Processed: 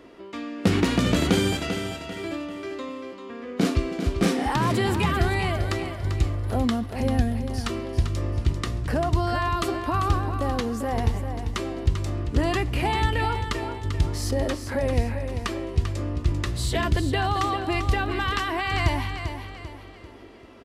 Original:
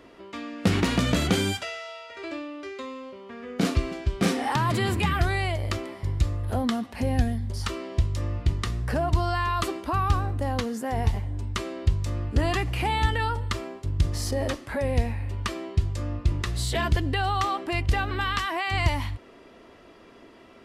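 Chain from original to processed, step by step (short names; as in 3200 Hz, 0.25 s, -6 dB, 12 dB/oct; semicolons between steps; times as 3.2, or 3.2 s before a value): bell 340 Hz +4 dB 1.1 oct; feedback echo 0.393 s, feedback 40%, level -8.5 dB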